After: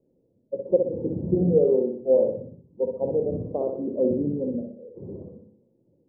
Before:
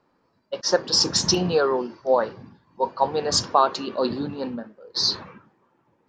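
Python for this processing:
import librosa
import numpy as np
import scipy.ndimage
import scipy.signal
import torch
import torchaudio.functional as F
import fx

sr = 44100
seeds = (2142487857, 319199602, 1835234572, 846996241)

y = scipy.signal.sosfilt(scipy.signal.ellip(4, 1.0, 70, 540.0, 'lowpass', fs=sr, output='sos'), x)
y = fx.echo_feedback(y, sr, ms=62, feedback_pct=45, wet_db=-5.0)
y = y * librosa.db_to_amplitude(1.5)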